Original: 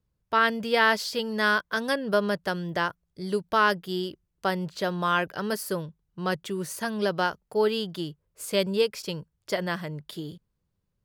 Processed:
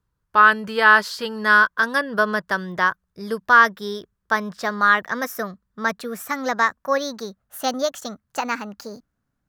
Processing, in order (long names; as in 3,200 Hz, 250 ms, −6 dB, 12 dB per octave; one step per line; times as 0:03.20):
gliding playback speed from 92% → 141%
flat-topped bell 1,300 Hz +9 dB 1.1 octaves
level +1 dB